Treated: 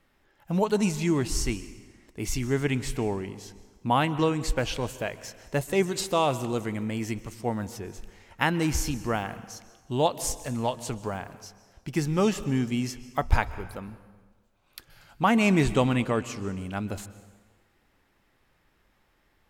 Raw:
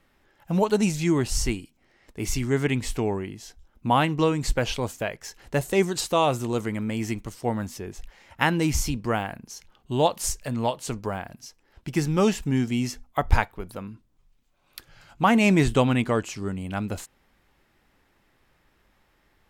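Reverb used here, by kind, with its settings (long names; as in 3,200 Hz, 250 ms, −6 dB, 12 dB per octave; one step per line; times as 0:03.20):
dense smooth reverb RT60 1.4 s, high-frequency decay 0.8×, pre-delay 115 ms, DRR 15 dB
level −2.5 dB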